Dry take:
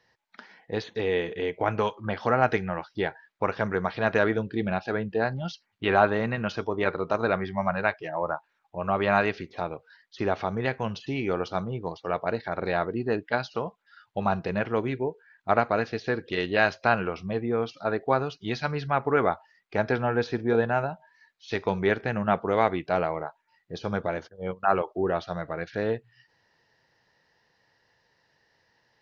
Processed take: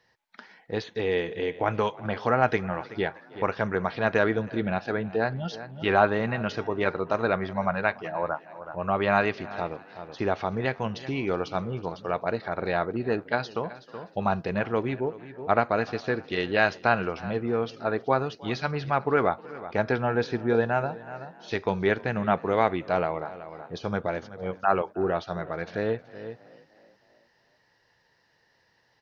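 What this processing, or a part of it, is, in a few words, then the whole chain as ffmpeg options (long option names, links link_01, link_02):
ducked delay: -filter_complex "[0:a]asettb=1/sr,asplit=3[link_01][link_02][link_03];[link_01]atrim=end=14.824[link_04];[link_02]atrim=start=14.82:end=15.62,asetpts=PTS-STARTPTS,afade=type=in:duration=0.004:curve=qsin,afade=type=out:start_time=0.796:duration=0.004:curve=qsin,lowpass=5900[link_05];[link_03]atrim=start=15.616[link_06];[link_04][link_05]acrossfade=duration=0.004:curve1=hsin:curve2=qsin[link_07];[link_07][link_06]acrossfade=duration=0.004:curve1=qsin:curve2=hsin,asplit=5[link_08][link_09][link_10][link_11][link_12];[link_09]adelay=313,afreqshift=39,volume=-23dB[link_13];[link_10]adelay=626,afreqshift=78,volume=-28.4dB[link_14];[link_11]adelay=939,afreqshift=117,volume=-33.7dB[link_15];[link_12]adelay=1252,afreqshift=156,volume=-39.1dB[link_16];[link_08][link_13][link_14][link_15][link_16]amix=inputs=5:normalize=0,asplit=3[link_17][link_18][link_19];[link_18]adelay=375,volume=-6.5dB[link_20];[link_19]apad=whole_len=1351504[link_21];[link_20][link_21]sidechaincompress=threshold=-40dB:ratio=5:attack=16:release=390[link_22];[link_17][link_22]amix=inputs=2:normalize=0"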